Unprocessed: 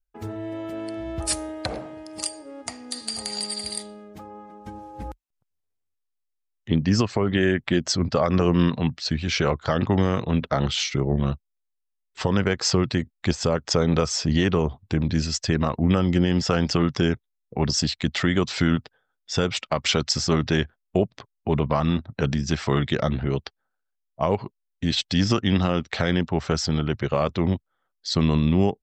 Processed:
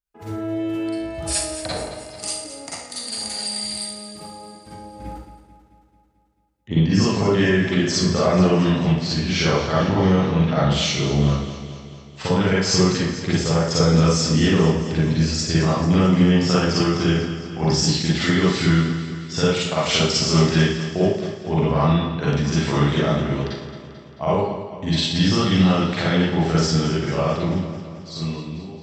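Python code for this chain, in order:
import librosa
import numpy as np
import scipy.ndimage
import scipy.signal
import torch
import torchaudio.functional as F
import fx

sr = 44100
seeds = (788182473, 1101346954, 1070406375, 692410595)

y = fx.fade_out_tail(x, sr, length_s=2.09)
y = scipy.signal.sosfilt(scipy.signal.butter(2, 40.0, 'highpass', fs=sr, output='sos'), y)
y = fx.echo_feedback(y, sr, ms=220, feedback_pct=59, wet_db=-12.0)
y = fx.rev_schroeder(y, sr, rt60_s=0.61, comb_ms=38, drr_db=-8.0)
y = F.gain(torch.from_numpy(y), -5.0).numpy()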